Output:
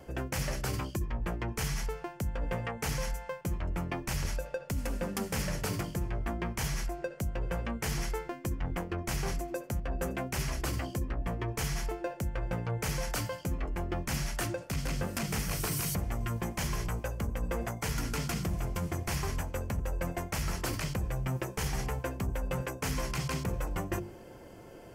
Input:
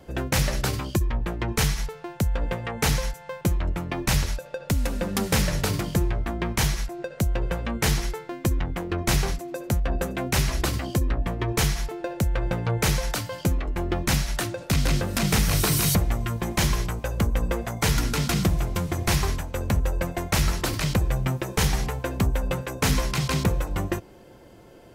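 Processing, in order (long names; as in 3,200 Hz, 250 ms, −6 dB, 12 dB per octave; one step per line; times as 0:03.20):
parametric band 3,800 Hz −9.5 dB 0.28 octaves
mains-hum notches 50/100/150/200/250/300/350 Hz
reversed playback
downward compressor, threshold −30 dBFS, peak gain reduction 12 dB
reversed playback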